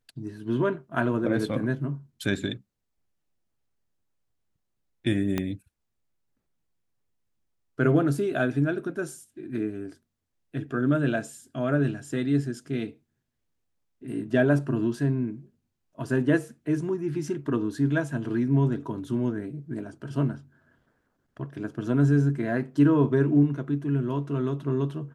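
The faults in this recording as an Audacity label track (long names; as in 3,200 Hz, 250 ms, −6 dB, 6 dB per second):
5.380000	5.380000	click −13 dBFS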